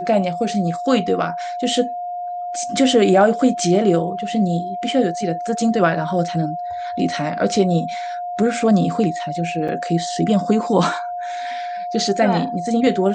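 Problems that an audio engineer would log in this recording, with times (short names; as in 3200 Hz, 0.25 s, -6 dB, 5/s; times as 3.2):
tone 710 Hz -24 dBFS
9.68–9.69 gap 6 ms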